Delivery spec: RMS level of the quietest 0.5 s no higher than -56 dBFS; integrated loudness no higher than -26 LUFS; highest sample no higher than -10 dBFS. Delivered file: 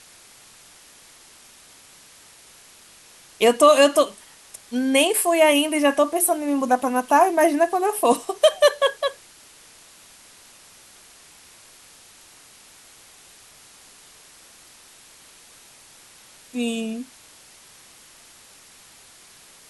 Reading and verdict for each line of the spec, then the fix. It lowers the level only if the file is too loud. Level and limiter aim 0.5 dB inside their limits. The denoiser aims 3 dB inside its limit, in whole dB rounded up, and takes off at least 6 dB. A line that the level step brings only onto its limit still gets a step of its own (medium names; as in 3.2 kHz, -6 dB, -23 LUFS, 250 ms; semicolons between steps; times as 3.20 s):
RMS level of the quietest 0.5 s -49 dBFS: fail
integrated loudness -19.5 LUFS: fail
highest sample -4.5 dBFS: fail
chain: noise reduction 6 dB, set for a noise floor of -49 dBFS; trim -7 dB